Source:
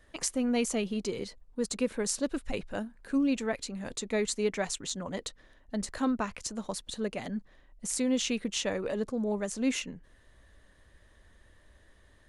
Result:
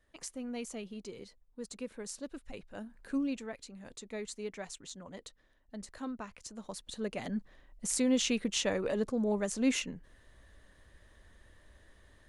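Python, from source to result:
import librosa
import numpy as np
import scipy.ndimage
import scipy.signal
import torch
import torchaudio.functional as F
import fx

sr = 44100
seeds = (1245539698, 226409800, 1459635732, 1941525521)

y = fx.gain(x, sr, db=fx.line((2.74, -11.5), (2.95, -1.0), (3.51, -11.0), (6.37, -11.0), (7.37, 0.0)))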